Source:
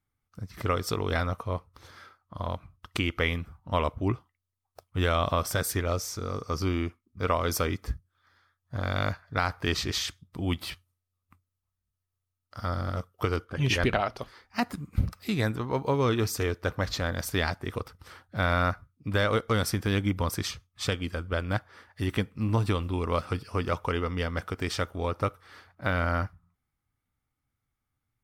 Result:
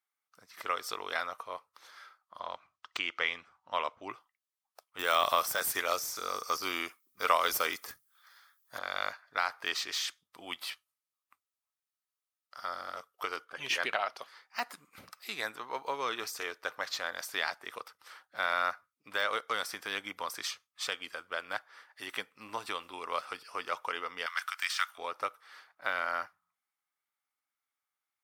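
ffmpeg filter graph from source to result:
ffmpeg -i in.wav -filter_complex "[0:a]asettb=1/sr,asplit=3[link_01][link_02][link_03];[link_01]atrim=end=2.394[link_04];[link_02]atrim=start=2.39:end=4.09,asetpts=PTS-STARTPTS,afade=type=in:duration=0.004:curve=qsin,afade=type=out:start_time=1.696:duration=0.004:curve=qsin,lowpass=frequency=7300:width=0.5412,lowpass=frequency=7300:width=1.3066,lowshelf=frequency=72:gain=7[link_05];[link_03]atrim=start=4.086[link_06];[link_04][link_05]acrossfade=duration=0.004:curve1=hsin:curve2=qsin[link_07];[link_07][link_06]acrossfade=duration=0.004:curve1=qsin:curve2=hsin,asettb=1/sr,asplit=3[link_08][link_09][link_10];[link_08]atrim=end=4.994[link_11];[link_09]atrim=start=4.99:end=8.79,asetpts=PTS-STARTPTS,afade=type=in:duration=0.004:curve=qsin,afade=type=out:start_time=3.796:duration=0.004:curve=qsin,aemphasis=mode=production:type=50fm,acontrast=49[link_12];[link_10]atrim=start=8.786[link_13];[link_11][link_12]acrossfade=duration=0.004:curve1=hsin:curve2=qsin[link_14];[link_14][link_13]acrossfade=duration=0.004:curve1=qsin:curve2=hsin,asettb=1/sr,asplit=3[link_15][link_16][link_17];[link_15]atrim=end=24.264[link_18];[link_16]atrim=start=24.26:end=24.98,asetpts=PTS-STARTPTS,afade=type=in:duration=0.004:curve=qsin,afade=type=out:start_time=0.716:duration=0.004:curve=qsin,highpass=frequency=1100:width=0.5412,highpass=frequency=1100:width=1.3066,highshelf=frequency=2200:gain=3.5,acontrast=21[link_19];[link_17]atrim=start=24.976[link_20];[link_18][link_19]acrossfade=duration=0.004:curve1=hsin:curve2=qsin[link_21];[link_21][link_20]acrossfade=duration=0.004:curve1=qsin:curve2=hsin,highpass=830,deesser=0.65,volume=-1.5dB" out.wav

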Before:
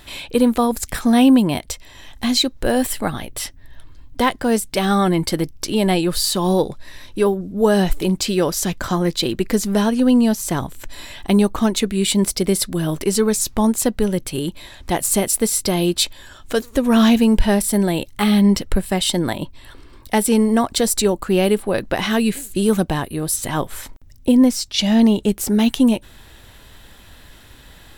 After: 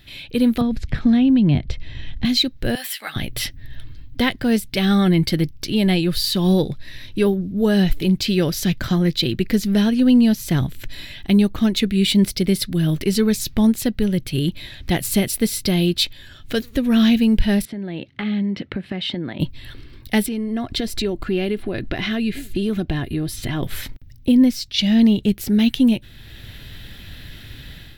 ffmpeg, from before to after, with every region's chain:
ffmpeg -i in.wav -filter_complex "[0:a]asettb=1/sr,asplit=3[link_01][link_02][link_03];[link_01]atrim=end=0.614[link_04];[link_02]atrim=start=0.61:end=2.25,asetpts=PTS-STARTPTS,afade=type=in:duration=0.004:curve=qsin,afade=type=out:start_time=1.636:duration=0.004:curve=qsin,lowpass=4100,acrossover=split=170|1400[link_05][link_06][link_07];[link_05]acompressor=threshold=-33dB:ratio=4[link_08];[link_06]acompressor=threshold=-21dB:ratio=4[link_09];[link_07]acompressor=threshold=-38dB:ratio=4[link_10];[link_08][link_09][link_10]amix=inputs=3:normalize=0,lowshelf=frequency=210:gain=11.5[link_11];[link_03]atrim=start=2.246[link_12];[link_04][link_11]acrossfade=duration=0.004:curve1=hsin:curve2=qsin[link_13];[link_13][link_12]acrossfade=duration=0.004:curve1=qsin:curve2=hsin,asettb=1/sr,asplit=3[link_14][link_15][link_16];[link_14]atrim=end=2.754[link_17];[link_15]atrim=start=2.75:end=3.16,asetpts=PTS-STARTPTS,afade=type=in:duration=0.004:curve=qsin,afade=type=out:start_time=0.406:duration=0.004:curve=qsin,highpass=1100,asplit=2[link_18][link_19];[link_19]adelay=13,volume=-6dB[link_20];[link_18][link_20]amix=inputs=2:normalize=0,atrim=end_sample=18081[link_21];[link_16]atrim=start=3.156[link_22];[link_17][link_21]acrossfade=duration=0.004:curve1=hsin:curve2=qsin[link_23];[link_23][link_22]acrossfade=duration=0.004:curve1=qsin:curve2=hsin,asettb=1/sr,asplit=3[link_24][link_25][link_26];[link_24]atrim=end=17.654[link_27];[link_25]atrim=start=17.65:end=19.4,asetpts=PTS-STARTPTS,afade=type=in:duration=0.004:curve=qsin,afade=type=out:start_time=1.746:duration=0.004:curve=qsin,highpass=200,lowpass=2300,acompressor=threshold=-27dB:ratio=6:attack=3.2:release=140:knee=1:detection=peak[link_28];[link_26]atrim=start=19.396[link_29];[link_27][link_28]acrossfade=duration=0.004:curve1=hsin:curve2=qsin[link_30];[link_30][link_29]acrossfade=duration=0.004:curve1=qsin:curve2=hsin,asettb=1/sr,asplit=3[link_31][link_32][link_33];[link_31]atrim=end=20.264[link_34];[link_32]atrim=start=20.26:end=23.63,asetpts=PTS-STARTPTS,afade=type=in:duration=0.004:curve=qsin,afade=type=out:start_time=3.366:duration=0.004:curve=qsin,lowpass=frequency=3100:poles=1,acompressor=threshold=-28dB:ratio=2:attack=3.2:release=140:knee=1:detection=peak,aecho=1:1:2.9:0.39,atrim=end_sample=148617[link_35];[link_33]atrim=start=23.626[link_36];[link_34][link_35]acrossfade=duration=0.004:curve1=hsin:curve2=qsin[link_37];[link_37][link_36]acrossfade=duration=0.004:curve1=qsin:curve2=hsin,equalizer=frequency=125:width_type=o:width=1:gain=7,equalizer=frequency=500:width_type=o:width=1:gain=-4,equalizer=frequency=1000:width_type=o:width=1:gain=-12,equalizer=frequency=2000:width_type=o:width=1:gain=3,equalizer=frequency=4000:width_type=o:width=1:gain=4,equalizer=frequency=8000:width_type=o:width=1:gain=-12,dynaudnorm=framelen=130:gausssize=5:maxgain=11.5dB,volume=-5.5dB" out.wav

